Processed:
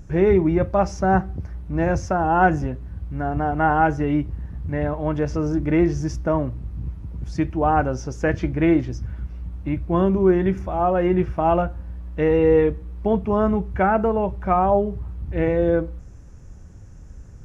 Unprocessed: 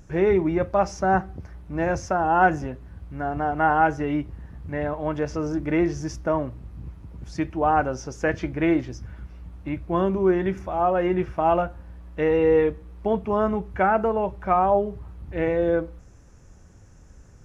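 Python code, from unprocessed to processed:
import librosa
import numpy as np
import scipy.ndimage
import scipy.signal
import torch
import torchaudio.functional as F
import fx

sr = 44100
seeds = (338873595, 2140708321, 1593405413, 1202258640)

y = fx.low_shelf(x, sr, hz=260.0, db=9.0)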